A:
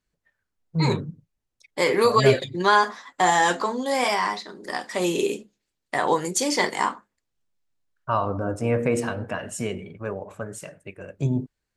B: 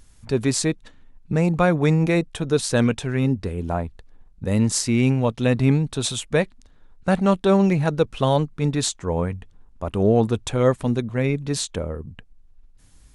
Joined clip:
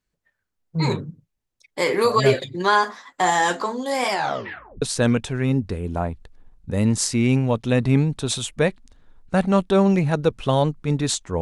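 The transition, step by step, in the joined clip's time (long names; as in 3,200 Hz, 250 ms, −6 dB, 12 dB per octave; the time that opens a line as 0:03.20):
A
0:04.10: tape stop 0.72 s
0:04.82: continue with B from 0:02.56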